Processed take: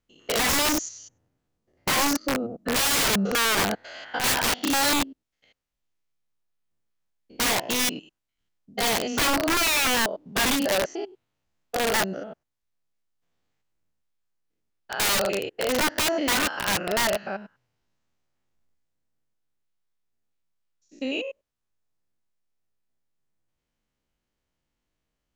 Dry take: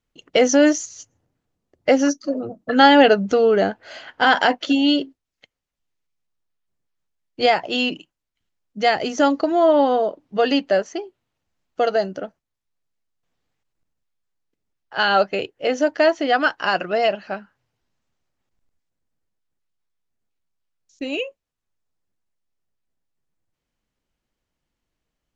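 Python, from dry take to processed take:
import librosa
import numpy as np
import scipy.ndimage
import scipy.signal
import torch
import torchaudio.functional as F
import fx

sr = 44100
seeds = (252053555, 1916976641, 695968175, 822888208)

y = fx.spec_steps(x, sr, hold_ms=100)
y = (np.mod(10.0 ** (17.5 / 20.0) * y + 1.0, 2.0) - 1.0) / 10.0 ** (17.5 / 20.0)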